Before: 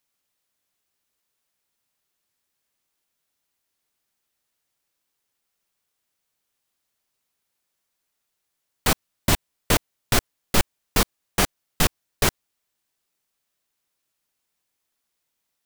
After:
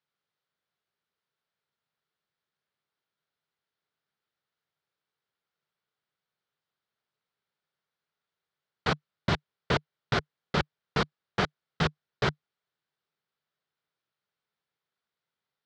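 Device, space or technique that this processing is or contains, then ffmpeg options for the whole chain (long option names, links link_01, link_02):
guitar cabinet: -af "highpass=82,equalizer=frequency=150:width_type=q:width=4:gain=8,equalizer=frequency=280:width_type=q:width=4:gain=-6,equalizer=frequency=430:width_type=q:width=4:gain=4,equalizer=frequency=1400:width_type=q:width=4:gain=5,equalizer=frequency=2600:width_type=q:width=4:gain=-4,lowpass=frequency=4300:width=0.5412,lowpass=frequency=4300:width=1.3066,volume=-5.5dB"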